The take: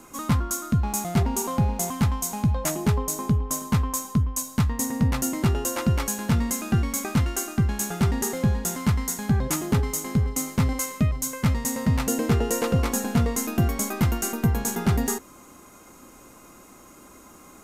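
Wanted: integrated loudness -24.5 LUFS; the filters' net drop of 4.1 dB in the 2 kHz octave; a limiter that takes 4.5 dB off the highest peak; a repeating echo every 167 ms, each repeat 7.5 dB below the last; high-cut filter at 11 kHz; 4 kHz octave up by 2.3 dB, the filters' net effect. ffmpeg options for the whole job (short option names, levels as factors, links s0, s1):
-af "lowpass=11000,equalizer=f=2000:t=o:g=-6.5,equalizer=f=4000:t=o:g=5,alimiter=limit=0.158:level=0:latency=1,aecho=1:1:167|334|501|668|835:0.422|0.177|0.0744|0.0312|0.0131,volume=1.12"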